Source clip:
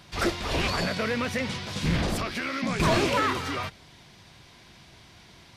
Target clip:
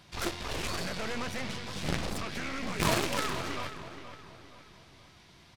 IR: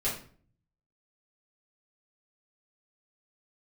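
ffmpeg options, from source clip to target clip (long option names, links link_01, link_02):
-filter_complex "[0:a]aeval=exprs='0.178*(cos(1*acos(clip(val(0)/0.178,-1,1)))-cos(1*PI/2))+0.0794*(cos(3*acos(clip(val(0)/0.178,-1,1)))-cos(3*PI/2))+0.0282*(cos(4*acos(clip(val(0)/0.178,-1,1)))-cos(4*PI/2))+0.0398*(cos(5*acos(clip(val(0)/0.178,-1,1)))-cos(5*PI/2))+0.0355*(cos(6*acos(clip(val(0)/0.178,-1,1)))-cos(6*PI/2))':channel_layout=same,asplit=2[link_01][link_02];[link_02]adelay=472,lowpass=frequency=3900:poles=1,volume=-11dB,asplit=2[link_03][link_04];[link_04]adelay=472,lowpass=frequency=3900:poles=1,volume=0.43,asplit=2[link_05][link_06];[link_06]adelay=472,lowpass=frequency=3900:poles=1,volume=0.43,asplit=2[link_07][link_08];[link_08]adelay=472,lowpass=frequency=3900:poles=1,volume=0.43[link_09];[link_01][link_03][link_05][link_07][link_09]amix=inputs=5:normalize=0,volume=-3.5dB"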